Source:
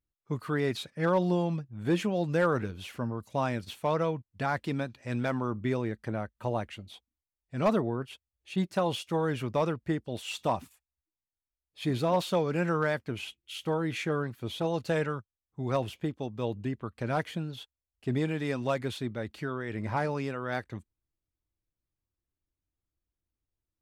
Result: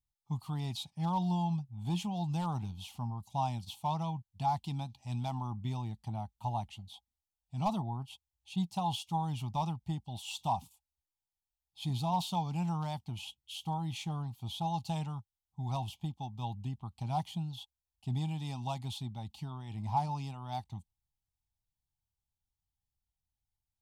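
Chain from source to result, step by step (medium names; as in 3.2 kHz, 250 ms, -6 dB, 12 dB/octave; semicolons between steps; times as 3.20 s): FFT filter 170 Hz 0 dB, 510 Hz -27 dB, 820 Hz +7 dB, 1.6 kHz -28 dB, 3.1 kHz -1 dB; trim -1 dB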